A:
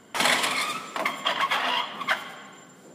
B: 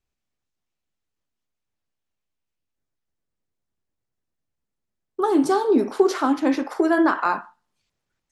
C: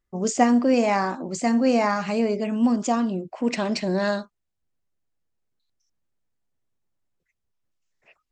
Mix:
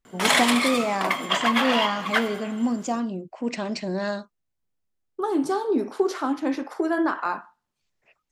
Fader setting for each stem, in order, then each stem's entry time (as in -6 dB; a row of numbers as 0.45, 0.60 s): +2.0, -5.0, -4.0 dB; 0.05, 0.00, 0.00 s